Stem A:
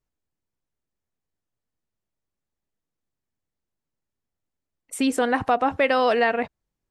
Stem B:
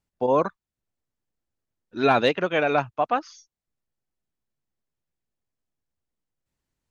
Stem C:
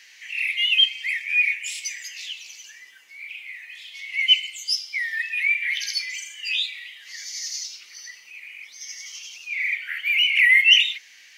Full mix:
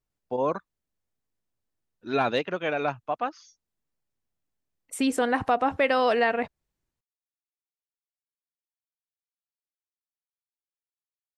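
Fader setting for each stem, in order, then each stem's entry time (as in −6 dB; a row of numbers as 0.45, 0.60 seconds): −2.5 dB, −5.5 dB, muted; 0.00 s, 0.10 s, muted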